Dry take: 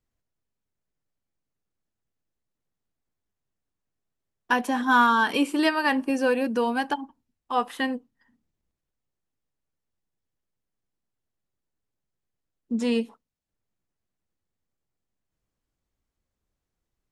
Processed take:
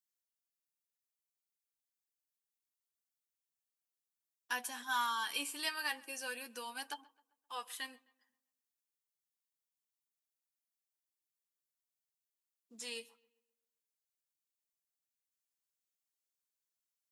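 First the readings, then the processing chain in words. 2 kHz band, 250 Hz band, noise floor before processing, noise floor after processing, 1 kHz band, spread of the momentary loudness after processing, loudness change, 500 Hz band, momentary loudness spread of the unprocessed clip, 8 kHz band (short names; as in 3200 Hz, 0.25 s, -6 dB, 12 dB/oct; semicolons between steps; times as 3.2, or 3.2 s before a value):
-14.0 dB, -29.5 dB, -85 dBFS, under -85 dBFS, -16.5 dB, 12 LU, -15.5 dB, -24.0 dB, 11 LU, -0.5 dB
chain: differentiator; flange 0.27 Hz, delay 5.4 ms, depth 5.5 ms, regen +39%; on a send: darkening echo 0.131 s, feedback 45%, low-pass 3100 Hz, level -23 dB; on the sum: gain +3 dB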